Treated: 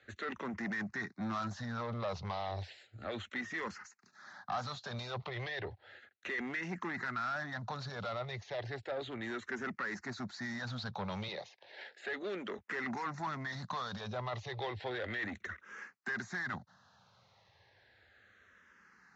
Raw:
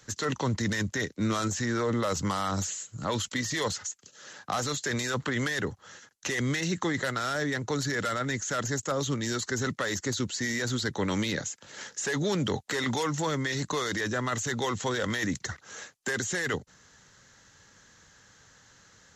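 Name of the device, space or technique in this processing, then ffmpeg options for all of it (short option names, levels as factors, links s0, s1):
barber-pole phaser into a guitar amplifier: -filter_complex "[0:a]asettb=1/sr,asplit=3[s0][s1][s2];[s0]atrim=end=11.284[s3];[s1]atrim=start=11.28:end=12.58,asetpts=PTS-STARTPTS,afade=t=in:d=0.004:c=qsin,afade=t=out:st=1.296:d=0.004:c=qsin,highpass=280[s4];[s2]atrim=start=12.576[s5];[s3][s4]acrossfade=d=0.004:c1=hsin:c2=qsin[s6];[s6][s5]acrossfade=d=0.004:c1=qsin:c2=hsin,asplit=2[s7][s8];[s8]afreqshift=-0.33[s9];[s7][s9]amix=inputs=2:normalize=1,asoftclip=type=tanh:threshold=0.0335,highpass=100,equalizer=f=150:t=q:w=4:g=-8,equalizer=f=290:t=q:w=4:g=-10,equalizer=f=470:t=q:w=4:g=-6,equalizer=f=730:t=q:w=4:g=4,equalizer=f=3100:t=q:w=4:g=-7,lowpass=f=3900:w=0.5412,lowpass=f=3900:w=1.3066,volume=0.891"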